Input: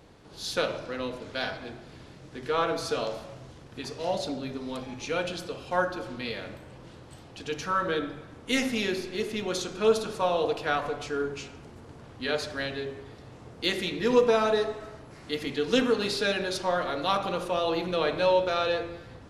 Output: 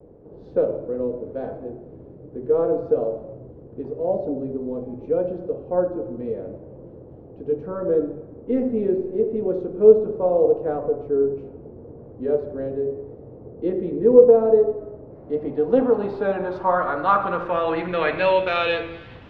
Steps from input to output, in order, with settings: low-pass sweep 470 Hz -> 2.9 kHz, 14.89–18.82 s; vibrato 0.78 Hz 38 cents; trim +3.5 dB

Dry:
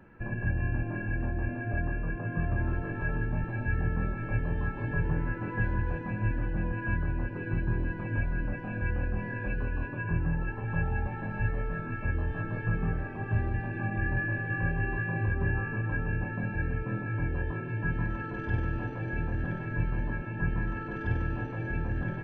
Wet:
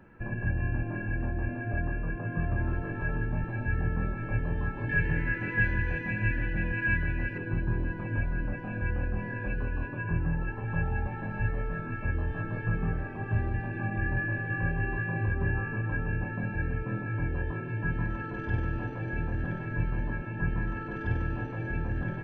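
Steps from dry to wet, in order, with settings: 4.89–7.38 s: resonant high shelf 1.5 kHz +7.5 dB, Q 3

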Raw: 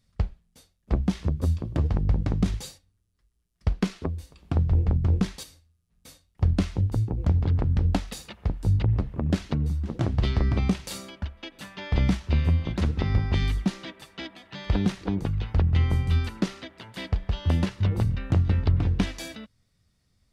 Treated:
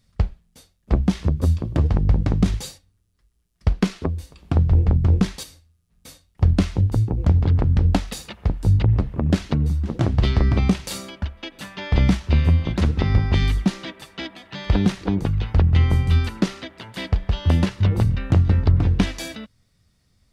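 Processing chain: 18.42–18.84 s: dynamic bell 3 kHz, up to -5 dB, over -54 dBFS, Q 1.2; trim +5.5 dB

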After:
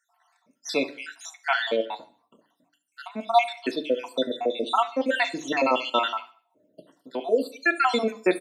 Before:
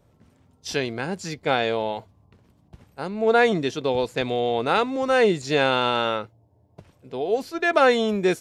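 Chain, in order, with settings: random holes in the spectrogram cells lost 69%; high-pass 250 Hz 24 dB/octave; comb of notches 410 Hz; feedback delay 71 ms, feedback 44%, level -20 dB; on a send at -9 dB: reverberation RT60 0.40 s, pre-delay 3 ms; on the sum: trim +4.5 dB

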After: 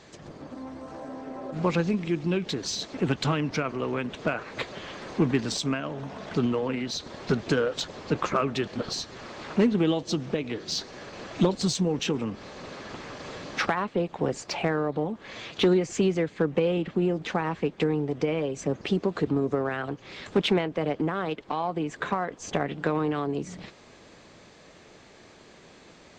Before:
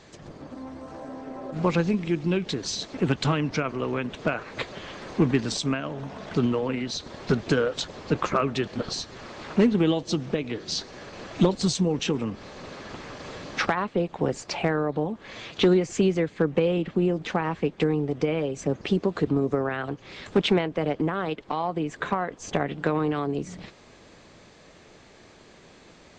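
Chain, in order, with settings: in parallel at -11 dB: saturation -29.5 dBFS, distortion -4 dB; on the sum: bass shelf 77 Hz -5.5 dB; trim -2 dB

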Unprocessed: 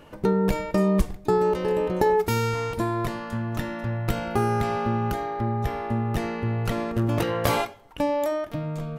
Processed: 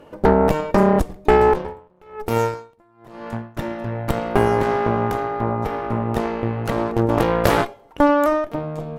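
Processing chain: peaking EQ 470 Hz +9.5 dB 2.3 oct; Chebyshev shaper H 6 -10 dB, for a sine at 0.5 dBFS; 1.49–3.57 s: logarithmic tremolo 1.1 Hz, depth 38 dB; trim -3 dB

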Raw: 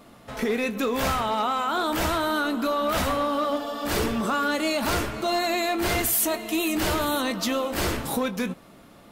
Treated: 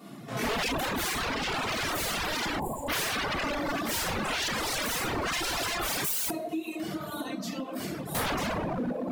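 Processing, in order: high-pass 160 Hz 24 dB/octave; tone controls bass +13 dB, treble +3 dB; band-passed feedback delay 385 ms, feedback 78%, band-pass 570 Hz, level -6 dB; simulated room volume 550 m³, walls mixed, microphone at 3.4 m; 6.30–8.15 s: compression 6:1, threshold -25 dBFS, peak gain reduction 17 dB; wavefolder -17.5 dBFS; 2.60–2.88 s: time-frequency box 1.1–6.9 kHz -24 dB; reverb removal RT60 1.8 s; trim -5 dB

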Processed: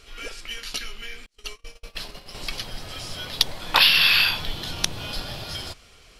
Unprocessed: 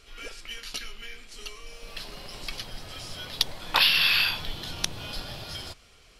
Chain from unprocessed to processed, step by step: 1.26–2.35 s: gate -39 dBFS, range -36 dB; trim +4.5 dB

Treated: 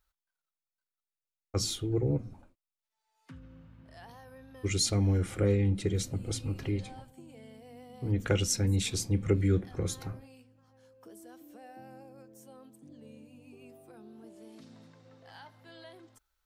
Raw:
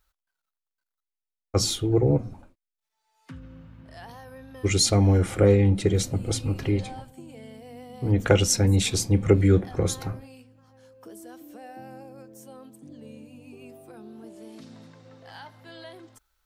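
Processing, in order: dynamic bell 740 Hz, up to -7 dB, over -39 dBFS, Q 1.2; trim -7 dB

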